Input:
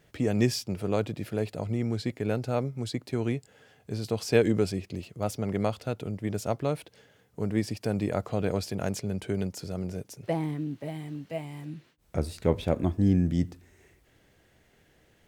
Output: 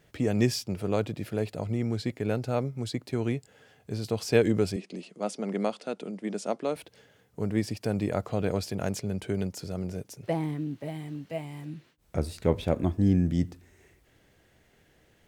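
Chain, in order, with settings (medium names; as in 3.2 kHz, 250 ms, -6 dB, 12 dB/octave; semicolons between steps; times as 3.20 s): 4.76–6.76 s: Chebyshev band-pass 190–9500 Hz, order 4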